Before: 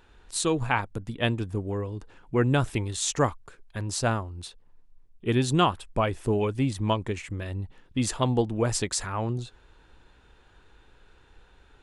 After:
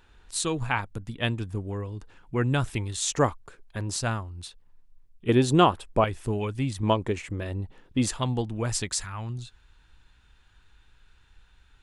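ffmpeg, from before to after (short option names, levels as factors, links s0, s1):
-af "asetnsamples=n=441:p=0,asendcmd='3.12 equalizer g 1.5;3.96 equalizer g -6.5;5.29 equalizer g 5.5;6.04 equalizer g -5.5;6.83 equalizer g 4;8.09 equalizer g -6.5;9.01 equalizer g -15',equalizer=f=460:t=o:w=2.1:g=-4.5"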